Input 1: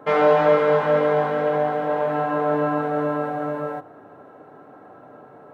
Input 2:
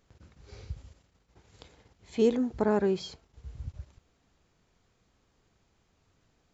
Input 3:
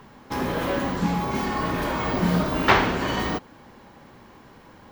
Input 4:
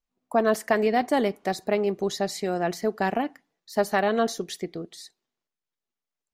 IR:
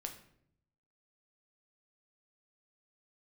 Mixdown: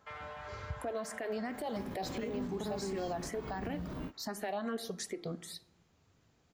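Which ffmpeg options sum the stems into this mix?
-filter_complex "[0:a]highpass=1200,acompressor=threshold=0.02:ratio=1.5,volume=0.178[s0];[1:a]lowshelf=f=120:g=7,volume=0.891,asplit=2[s1][s2];[2:a]acrossover=split=2700[s3][s4];[s4]acompressor=threshold=0.00501:ratio=4:attack=1:release=60[s5];[s3][s5]amix=inputs=2:normalize=0,adelay=1450,volume=0.531[s6];[3:a]alimiter=limit=0.15:level=0:latency=1:release=348,asplit=2[s7][s8];[s8]afreqshift=2.8[s9];[s7][s9]amix=inputs=2:normalize=1,adelay=500,volume=0.944,asplit=2[s10][s11];[s11]volume=0.447[s12];[s2]apad=whole_len=285255[s13];[s6][s13]sidechaingate=range=0.00794:threshold=0.00126:ratio=16:detection=peak[s14];[s0][s14]amix=inputs=2:normalize=0,acrossover=split=350|3000[s15][s16][s17];[s16]acompressor=threshold=0.00794:ratio=6[s18];[s15][s18][s17]amix=inputs=3:normalize=0,alimiter=level_in=2.66:limit=0.0631:level=0:latency=1:release=72,volume=0.376,volume=1[s19];[s1][s10]amix=inputs=2:normalize=0,highpass=86,acompressor=threshold=0.0282:ratio=6,volume=1[s20];[4:a]atrim=start_sample=2205[s21];[s12][s21]afir=irnorm=-1:irlink=0[s22];[s19][s20][s22]amix=inputs=3:normalize=0,alimiter=level_in=1.68:limit=0.0631:level=0:latency=1:release=164,volume=0.596"

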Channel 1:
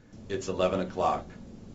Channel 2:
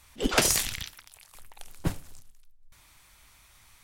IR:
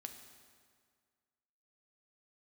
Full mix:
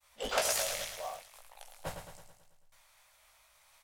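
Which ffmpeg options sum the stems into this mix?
-filter_complex "[0:a]acrusher=bits=5:mix=0:aa=0.000001,volume=0.112[s0];[1:a]bandreject=f=60:t=h:w=6,bandreject=f=120:t=h:w=6,bandreject=f=180:t=h:w=6,agate=range=0.0224:threshold=0.002:ratio=3:detection=peak,flanger=delay=15.5:depth=3.7:speed=1.9,volume=0.794,asplit=2[s1][s2];[s2]volume=0.422,aecho=0:1:109|218|327|436|545|654|763|872:1|0.54|0.292|0.157|0.085|0.0459|0.0248|0.0134[s3];[s0][s1][s3]amix=inputs=3:normalize=0,lowshelf=f=430:t=q:w=3:g=-10,alimiter=limit=0.15:level=0:latency=1:release=326"

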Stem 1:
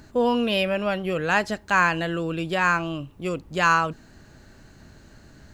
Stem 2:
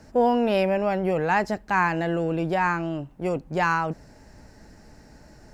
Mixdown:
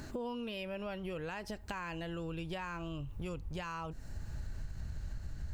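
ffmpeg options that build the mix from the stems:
-filter_complex "[0:a]asubboost=boost=12:cutoff=89,alimiter=limit=0.126:level=0:latency=1:release=451,volume=1.26[s0];[1:a]alimiter=limit=0.126:level=0:latency=1,aexciter=amount=2.5:drive=6.8:freq=6600,acompressor=threshold=0.0224:ratio=2.5,volume=0.398,asplit=2[s1][s2];[s2]apad=whole_len=244276[s3];[s0][s3]sidechaincompress=threshold=0.00501:ratio=4:attack=16:release=1020[s4];[s4][s1]amix=inputs=2:normalize=0,acompressor=threshold=0.0141:ratio=6"

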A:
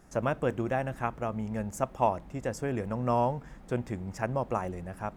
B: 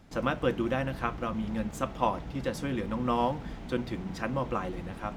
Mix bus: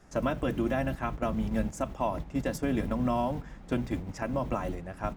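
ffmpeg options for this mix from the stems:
-filter_complex "[0:a]lowpass=4300,adynamicequalizer=threshold=0.00355:dfrequency=110:dqfactor=2.2:tfrequency=110:tqfactor=2.2:attack=5:release=100:ratio=0.375:range=3.5:mode=cutabove:tftype=bell,volume=1.12,asplit=2[s0][s1];[1:a]lowshelf=f=320:g=12,volume=0.596[s2];[s1]apad=whole_len=227720[s3];[s2][s3]sidechaingate=range=0.1:threshold=0.0178:ratio=16:detection=peak[s4];[s0][s4]amix=inputs=2:normalize=0,aemphasis=mode=production:type=50fm,alimiter=limit=0.119:level=0:latency=1:release=178"

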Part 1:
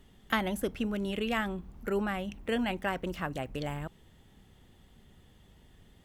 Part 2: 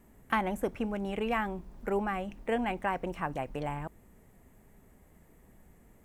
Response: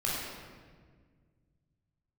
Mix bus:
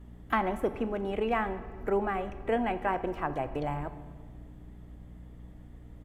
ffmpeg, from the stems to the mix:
-filter_complex "[0:a]lowshelf=f=420:g=11,aeval=exprs='val(0)+0.01*(sin(2*PI*60*n/s)+sin(2*PI*2*60*n/s)/2+sin(2*PI*3*60*n/s)/3+sin(2*PI*4*60*n/s)/4+sin(2*PI*5*60*n/s)/5)':c=same,volume=0.316,asplit=2[s0][s1];[s1]volume=0.1[s2];[1:a]lowpass=f=1800:p=1,adelay=3.4,volume=1.26,asplit=3[s3][s4][s5];[s4]volume=0.126[s6];[s5]apad=whole_len=266636[s7];[s0][s7]sidechaincompress=threshold=0.0224:ratio=8:attack=16:release=461[s8];[2:a]atrim=start_sample=2205[s9];[s2][s6]amix=inputs=2:normalize=0[s10];[s10][s9]afir=irnorm=-1:irlink=0[s11];[s8][s3][s11]amix=inputs=3:normalize=0"

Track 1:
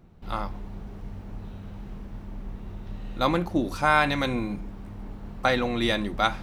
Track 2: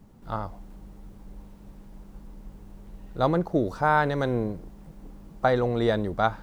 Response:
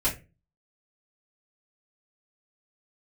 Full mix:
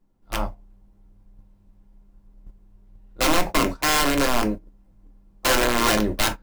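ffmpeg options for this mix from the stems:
-filter_complex "[0:a]tiltshelf=f=970:g=5,volume=0.188,asplit=2[s0][s1];[s1]volume=0.2[s2];[1:a]aeval=exprs='(mod(8.41*val(0)+1,2)-1)/8.41':c=same,equalizer=f=110:w=1.6:g=-9.5,volume=1.26,asplit=2[s3][s4];[s4]volume=0.251[s5];[2:a]atrim=start_sample=2205[s6];[s2][s5]amix=inputs=2:normalize=0[s7];[s7][s6]afir=irnorm=-1:irlink=0[s8];[s0][s3][s8]amix=inputs=3:normalize=0,agate=range=0.1:threshold=0.0631:ratio=16:detection=peak"

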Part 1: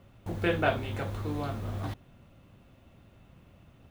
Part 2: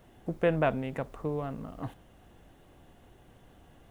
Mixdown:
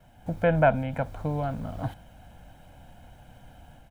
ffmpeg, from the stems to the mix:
-filter_complex "[0:a]volume=0.251[s0];[1:a]acrossover=split=2700[s1][s2];[s2]acompressor=threshold=0.00112:ratio=4:attack=1:release=60[s3];[s1][s3]amix=inputs=2:normalize=0,aecho=1:1:1.3:0.9,adelay=2.9,volume=0.794,asplit=2[s4][s5];[s5]apad=whole_len=172194[s6];[s0][s6]sidechaincompress=threshold=0.02:ratio=8:attack=37:release=781[s7];[s7][s4]amix=inputs=2:normalize=0,dynaudnorm=f=170:g=3:m=1.78"

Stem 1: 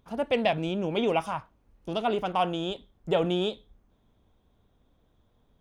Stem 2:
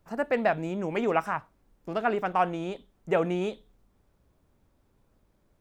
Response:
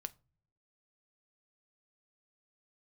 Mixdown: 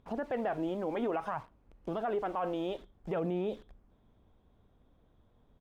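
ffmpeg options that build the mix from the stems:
-filter_complex "[0:a]acompressor=threshold=0.0251:ratio=6,alimiter=level_in=2.37:limit=0.0631:level=0:latency=1,volume=0.422,volume=1.06[s0];[1:a]highshelf=f=3000:g=-11,acrusher=bits=8:mix=0:aa=0.000001,aphaser=in_gain=1:out_gain=1:delay=3.9:decay=0.4:speed=0.59:type=sinusoidal,volume=-1,adelay=0.7,volume=0.841[s1];[s0][s1]amix=inputs=2:normalize=0,aemphasis=mode=reproduction:type=75kf,alimiter=level_in=1.12:limit=0.0631:level=0:latency=1:release=43,volume=0.891"

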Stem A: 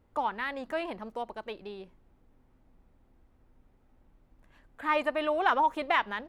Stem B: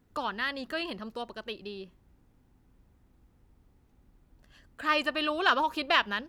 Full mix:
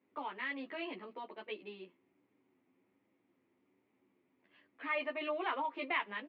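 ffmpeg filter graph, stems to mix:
-filter_complex "[0:a]highpass=f=310:p=1,equalizer=f=1400:t=o:w=0.77:g=-3,volume=0.668,asplit=2[s0][s1];[1:a]volume=-1,adelay=12,volume=0.708[s2];[s1]apad=whole_len=277726[s3];[s2][s3]sidechaincompress=threshold=0.0158:ratio=8:attack=5.2:release=209[s4];[s0][s4]amix=inputs=2:normalize=0,flanger=delay=9.7:depth=2.2:regen=-29:speed=1.3:shape=triangular,highpass=f=180:w=0.5412,highpass=f=180:w=1.3066,equalizer=f=180:t=q:w=4:g=-9,equalizer=f=340:t=q:w=4:g=5,equalizer=f=550:t=q:w=4:g=-3,equalizer=f=780:t=q:w=4:g=-6,equalizer=f=1500:t=q:w=4:g=-6,equalizer=f=2200:t=q:w=4:g=7,lowpass=f=3100:w=0.5412,lowpass=f=3100:w=1.3066"

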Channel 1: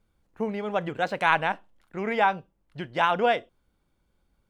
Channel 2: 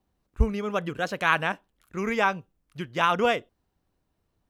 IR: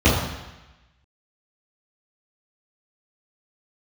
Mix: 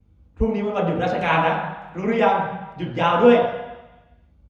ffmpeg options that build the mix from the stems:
-filter_complex "[0:a]volume=0.168,asplit=2[s0][s1];[s1]volume=0.708[s2];[1:a]lowpass=5800,aeval=exprs='val(0)+0.002*(sin(2*PI*50*n/s)+sin(2*PI*2*50*n/s)/2+sin(2*PI*3*50*n/s)/3+sin(2*PI*4*50*n/s)/4+sin(2*PI*5*50*n/s)/5)':c=same,adelay=4.8,volume=0.631[s3];[2:a]atrim=start_sample=2205[s4];[s2][s4]afir=irnorm=-1:irlink=0[s5];[s0][s3][s5]amix=inputs=3:normalize=0"

